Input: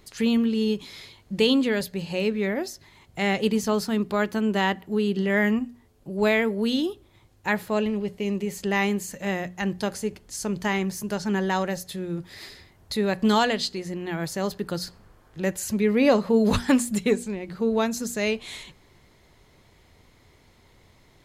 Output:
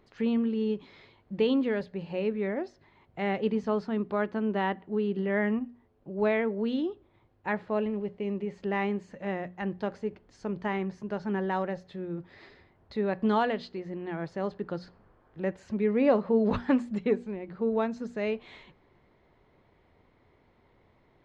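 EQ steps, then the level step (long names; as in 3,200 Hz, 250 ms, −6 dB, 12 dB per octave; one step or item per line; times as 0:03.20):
head-to-tape spacing loss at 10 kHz 43 dB
low-shelf EQ 190 Hz −10.5 dB
0.0 dB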